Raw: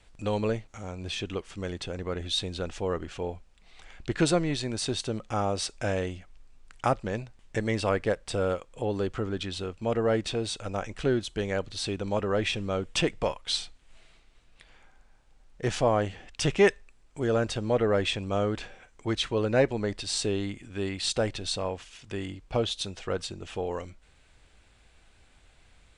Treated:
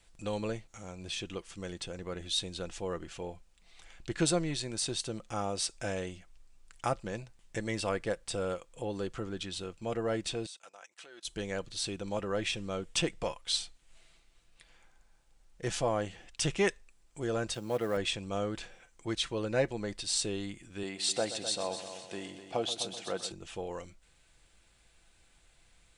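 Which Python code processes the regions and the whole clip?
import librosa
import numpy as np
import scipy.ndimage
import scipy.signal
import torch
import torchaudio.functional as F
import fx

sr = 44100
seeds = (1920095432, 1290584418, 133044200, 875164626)

y = fx.chain(x, sr, fx.highpass(hz=770.0, slope=12),
    fx.level_steps(step_db=23), at=(10.46, 11.25))
y = fx.chain(y, sr, fx.law_mismatch(coded='A'),
    fx.highpass(hz=100.0, slope=12), at=(17.54, 17.97))
y = fx.chain(y, sr, fx.highpass(hz=170.0, slope=12),
    fx.peak_eq(hz=730.0, db=6.5, octaves=0.47),
    fx.echo_heads(ms=127, heads='first and second', feedback_pct=49, wet_db=-13.0), at=(20.83, 23.32))
y = fx.high_shelf(y, sr, hz=5400.0, db=11.5)
y = y + 0.3 * np.pad(y, (int(5.9 * sr / 1000.0), 0))[:len(y)]
y = y * 10.0 ** (-7.0 / 20.0)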